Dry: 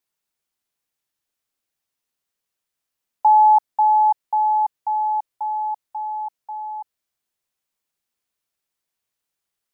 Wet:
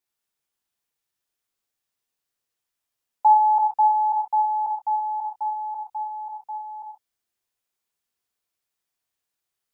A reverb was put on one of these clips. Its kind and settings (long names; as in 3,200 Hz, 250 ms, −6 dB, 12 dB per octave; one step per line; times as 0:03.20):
reverb whose tail is shaped and stops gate 160 ms flat, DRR −0.5 dB
level −4.5 dB